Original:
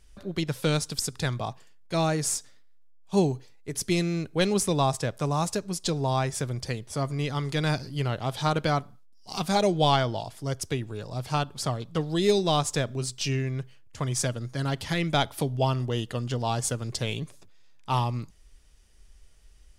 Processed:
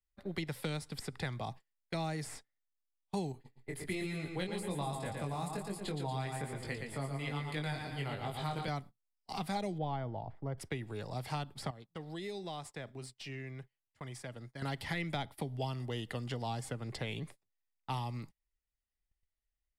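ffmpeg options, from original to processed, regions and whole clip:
-filter_complex "[0:a]asettb=1/sr,asplit=3[a][b][c];[a]atrim=end=3.324[d];[b]atrim=start=3.32:end=8.68,asetpts=PTS-STARTPTS,afade=t=in:d=0.004:c=qsin,afade=t=out:st=5.356:d=0.004:c=qsin,equalizer=f=5.7k:w=5.1:g=-14,aecho=1:1:116|232|348|464|580:0.501|0.205|0.0842|0.0345|0.0142,atrim=end_sample=236376,flanger=delay=19.5:depth=3:speed=1.2[e];[c]atrim=start=8.676[f];[d][e]acrossfade=d=0.004:c1=hsin:c2=qsin[g];[g][f]acrossfade=d=0.004:c1=qsin:c2=hsin,asettb=1/sr,asplit=3[h][i][j];[h]atrim=end=9.784[k];[i]atrim=start=9.78:end=10.58,asetpts=PTS-STARTPTS,afade=t=in:d=0.004:c=qsin,afade=t=out:st=0.796:d=0.004:c=qsin,lowpass=1.1k,asubboost=boost=8:cutoff=120[l];[j]atrim=start=10.576[m];[k][l]acrossfade=d=0.004:c1=hsin:c2=qsin[n];[n][m]acrossfade=d=0.004:c1=qsin:c2=hsin,asettb=1/sr,asplit=3[o][p][q];[o]atrim=end=11.704[r];[p]atrim=start=11.7:end=14.62,asetpts=PTS-STARTPTS,afade=t=in:d=0.004:c=qsin,afade=t=out:st=2.916:d=0.004:c=qsin,acompressor=threshold=-41dB:ratio=2.5:attack=3.2:release=140:knee=1:detection=peak,lowshelf=f=120:g=-7[s];[q]atrim=start=14.616[t];[r][s]acrossfade=d=0.004:c1=hsin:c2=qsin[u];[u][t]acrossfade=d=0.004:c1=qsin:c2=hsin,acrossover=split=150|300|3400[v][w][x][y];[v]acompressor=threshold=-42dB:ratio=4[z];[w]acompressor=threshold=-40dB:ratio=4[aa];[x]acompressor=threshold=-39dB:ratio=4[ab];[y]acompressor=threshold=-45dB:ratio=4[ac];[z][aa][ab][ac]amix=inputs=4:normalize=0,agate=range=-31dB:threshold=-44dB:ratio=16:detection=peak,equalizer=f=800:t=o:w=0.33:g=6,equalizer=f=2k:t=o:w=0.33:g=9,equalizer=f=6.3k:t=o:w=0.33:g=-9,volume=-3.5dB"

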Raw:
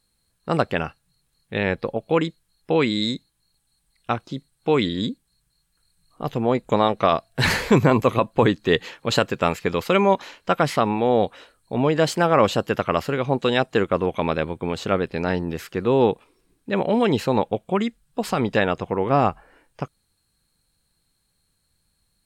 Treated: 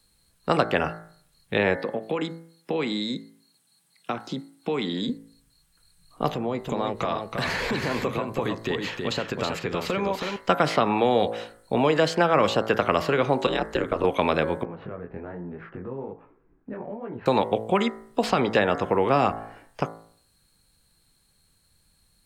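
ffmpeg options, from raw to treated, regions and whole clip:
-filter_complex "[0:a]asettb=1/sr,asplit=3[a][b][c];[a]atrim=end=1.764[d];[b]atrim=start=1.76:end=5.09,asetpts=PTS-STARTPTS,afade=t=in:d=0.004:c=qsin,afade=t=out:st=3.326:d=0.004:c=qsin,acompressor=threshold=-28dB:ratio=5:attack=3.2:release=140:knee=1:detection=peak,highpass=f=150:w=0.5412,highpass=f=150:w=1.3066[e];[c]atrim=start=5.086[f];[d][e]acrossfade=d=0.004:c1=hsin:c2=qsin[g];[g][f]acrossfade=d=0.004:c1=qsin:c2=hsin,asettb=1/sr,asplit=3[h][i][j];[h]atrim=end=6.324[k];[i]atrim=start=6.32:end=10.36,asetpts=PTS-STARTPTS,afade=t=in:d=0.004:c=qsin,afade=t=out:st=4.036:d=0.004:c=qsin,acompressor=threshold=-27dB:ratio=8:attack=3.2:release=140:knee=1:detection=peak,aecho=1:1:322:0.531,atrim=end_sample=178164[l];[j]atrim=start=10.356[m];[k][l]acrossfade=d=0.004:c1=hsin:c2=qsin[n];[n][m]acrossfade=d=0.004:c1=qsin:c2=hsin,asettb=1/sr,asplit=3[o][p][q];[o]atrim=end=13.464[r];[p]atrim=start=13.46:end=14.04,asetpts=PTS-STARTPTS,afade=t=in:d=0.004:c=qsin,afade=t=out:st=0.576:d=0.004:c=qsin,acompressor=threshold=-20dB:ratio=6:attack=3.2:release=140:knee=1:detection=peak,aeval=exprs='val(0)*sin(2*PI*81*n/s)':c=same[s];[q]atrim=start=14.036[t];[r][s]acrossfade=d=0.004:c1=hsin:c2=qsin[u];[u][t]acrossfade=d=0.004:c1=qsin:c2=hsin,asettb=1/sr,asplit=3[v][w][x];[v]atrim=end=14.634[y];[w]atrim=start=14.63:end=17.26,asetpts=PTS-STARTPTS,afade=t=in:d=0.004:c=qsin,afade=t=out:st=2.626:d=0.004:c=qsin,lowpass=f=1.7k:w=0.5412,lowpass=f=1.7k:w=1.3066,acompressor=threshold=-33dB:ratio=16:attack=3.2:release=140:knee=1:detection=peak,flanger=delay=16.5:depth=6.9:speed=1.2[z];[x]atrim=start=17.256[aa];[y][z]acrossfade=d=0.004:c1=hsin:c2=qsin[ab];[ab][aa]acrossfade=d=0.004:c1=qsin:c2=hsin,bandreject=f=55.11:t=h:w=4,bandreject=f=110.22:t=h:w=4,bandreject=f=165.33:t=h:w=4,bandreject=f=220.44:t=h:w=4,bandreject=f=275.55:t=h:w=4,bandreject=f=330.66:t=h:w=4,bandreject=f=385.77:t=h:w=4,bandreject=f=440.88:t=h:w=4,bandreject=f=495.99:t=h:w=4,bandreject=f=551.1:t=h:w=4,bandreject=f=606.21:t=h:w=4,bandreject=f=661.32:t=h:w=4,bandreject=f=716.43:t=h:w=4,bandreject=f=771.54:t=h:w=4,bandreject=f=826.65:t=h:w=4,bandreject=f=881.76:t=h:w=4,bandreject=f=936.87:t=h:w=4,bandreject=f=991.98:t=h:w=4,bandreject=f=1.04709k:t=h:w=4,bandreject=f=1.1022k:t=h:w=4,bandreject=f=1.15731k:t=h:w=4,bandreject=f=1.21242k:t=h:w=4,bandreject=f=1.26753k:t=h:w=4,bandreject=f=1.32264k:t=h:w=4,bandreject=f=1.37775k:t=h:w=4,bandreject=f=1.43286k:t=h:w=4,bandreject=f=1.48797k:t=h:w=4,bandreject=f=1.54308k:t=h:w=4,bandreject=f=1.59819k:t=h:w=4,bandreject=f=1.6533k:t=h:w=4,bandreject=f=1.70841k:t=h:w=4,bandreject=f=1.76352k:t=h:w=4,bandreject=f=1.81863k:t=h:w=4,bandreject=f=1.87374k:t=h:w=4,bandreject=f=1.92885k:t=h:w=4,bandreject=f=1.98396k:t=h:w=4,bandreject=f=2.03907k:t=h:w=4,bandreject=f=2.09418k:t=h:w=4,bandreject=f=2.14929k:t=h:w=4,acrossover=split=200|400|1700|6200[ac][ad][ae][af][ag];[ac]acompressor=threshold=-41dB:ratio=4[ah];[ad]acompressor=threshold=-34dB:ratio=4[ai];[ae]acompressor=threshold=-26dB:ratio=4[aj];[af]acompressor=threshold=-35dB:ratio=4[ak];[ag]acompressor=threshold=-58dB:ratio=4[al];[ah][ai][aj][ak][al]amix=inputs=5:normalize=0,volume=5.5dB"

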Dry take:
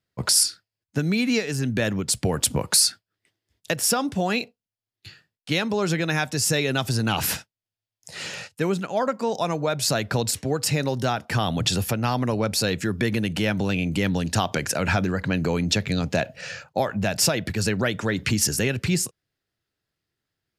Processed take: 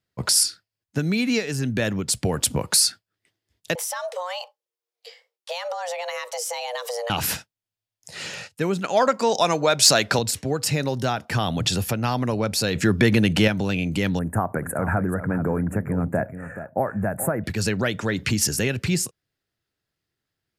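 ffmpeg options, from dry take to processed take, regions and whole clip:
-filter_complex "[0:a]asettb=1/sr,asplit=3[a][b][c];[a]atrim=end=3.754[d];[b]atrim=start=3.75:end=7.1,asetpts=PTS-STARTPTS,afade=t=in:d=0.004:c=qsin,afade=t=out:st=3.346:d=0.004:c=qsin,acompressor=threshold=-25dB:ratio=10:attack=3.2:release=140:knee=1:detection=peak,afreqshift=360[e];[c]atrim=start=7.096[f];[d][e]acrossfade=d=0.004:c1=hsin:c2=qsin[g];[g][f]acrossfade=d=0.004:c1=qsin:c2=hsin,asettb=1/sr,asplit=3[h][i][j];[h]atrim=end=8.844[k];[i]atrim=start=8.84:end=10.19,asetpts=PTS-STARTPTS,afade=t=in:d=0.004:c=qsin,afade=t=out:st=1.346:d=0.004:c=qsin,lowpass=6.3k,aemphasis=mode=production:type=bsi,acontrast=57[l];[j]atrim=start=10.186[m];[k][l]acrossfade=d=0.004:c1=hsin:c2=qsin[n];[n][m]acrossfade=d=0.004:c1=qsin:c2=hsin,asettb=1/sr,asplit=3[o][p][q];[o]atrim=end=12.754[r];[p]atrim=start=12.75:end=13.48,asetpts=PTS-STARTPTS,afade=t=in:d=0.004:c=qsin,afade=t=out:st=0.726:d=0.004:c=qsin,acontrast=64,highshelf=f=9.3k:g=-5[s];[q]atrim=start=13.476[t];[r][s]acrossfade=d=0.004:c1=hsin:c2=qsin[u];[u][t]acrossfade=d=0.004:c1=qsin:c2=hsin,asettb=1/sr,asplit=3[v][w][x];[v]atrim=end=14.194[y];[w]atrim=start=14.19:end=17.44,asetpts=PTS-STARTPTS,afade=t=in:d=0.004:c=qsin,afade=t=out:st=3.246:d=0.004:c=qsin,asuperstop=centerf=4200:order=8:qfactor=0.55,aecho=1:1:429:0.266,atrim=end_sample=143325[z];[x]atrim=start=17.436[aa];[y][z]acrossfade=d=0.004:c1=hsin:c2=qsin[ab];[ab][aa]acrossfade=d=0.004:c1=qsin:c2=hsin"

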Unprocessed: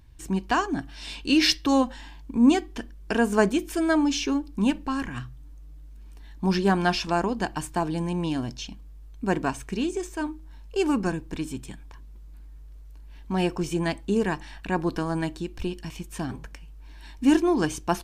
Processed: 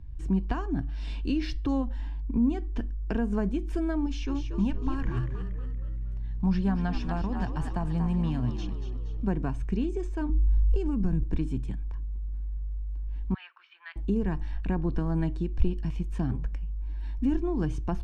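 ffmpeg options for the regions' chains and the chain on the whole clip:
-filter_complex "[0:a]asettb=1/sr,asplit=3[a][b][c];[a]atrim=end=4.064[d];[b]atrim=start=4.06:end=9.27,asetpts=PTS-STARTPTS,afade=t=in:d=0.004:c=qsin,afade=t=out:st=5.206:d=0.004:c=qsin,equalizer=f=360:w=1.6:g=-10.5,asplit=6[e][f][g][h][i][j];[f]adelay=235,afreqshift=64,volume=-9.5dB[k];[g]adelay=470,afreqshift=128,volume=-16.1dB[l];[h]adelay=705,afreqshift=192,volume=-22.6dB[m];[i]adelay=940,afreqshift=256,volume=-29.2dB[n];[j]adelay=1175,afreqshift=320,volume=-35.7dB[o];[e][k][l][m][n][o]amix=inputs=6:normalize=0,atrim=end_sample=229761[p];[c]atrim=start=9.266[q];[d][p]acrossfade=d=0.004:c1=hsin:c2=qsin[r];[r][q]acrossfade=d=0.004:c1=qsin:c2=hsin,asettb=1/sr,asplit=3[s][t][u];[s]atrim=end=10.294[v];[t]atrim=start=10.29:end=11.23,asetpts=PTS-STARTPTS,afade=t=in:d=0.004:c=qsin,afade=t=out:st=0.936:d=0.004:c=qsin,bass=f=250:g=11,treble=f=4k:g=4,acompressor=threshold=-29dB:ratio=3:attack=3.2:release=140:knee=1:detection=peak[w];[u]atrim=start=11.226[x];[v][w]acrossfade=d=0.004:c1=hsin:c2=qsin[y];[y][x]acrossfade=d=0.004:c1=qsin:c2=hsin,asettb=1/sr,asplit=3[z][aa][ab];[z]atrim=end=13.344[ac];[aa]atrim=start=13.34:end=13.96,asetpts=PTS-STARTPTS,afade=t=in:d=0.004:c=qsin,afade=t=out:st=0.616:d=0.004:c=qsin,asuperpass=centerf=2300:order=8:qfactor=0.79,aemphasis=mode=reproduction:type=75kf[ad];[ab]atrim=start=13.956[ae];[ac][ad]acrossfade=d=0.004:c1=hsin:c2=qsin[af];[af][ae]acrossfade=d=0.004:c1=qsin:c2=hsin,acrossover=split=140[ag][ah];[ah]acompressor=threshold=-28dB:ratio=4[ai];[ag][ai]amix=inputs=2:normalize=0,aemphasis=mode=reproduction:type=riaa,volume=-5dB"

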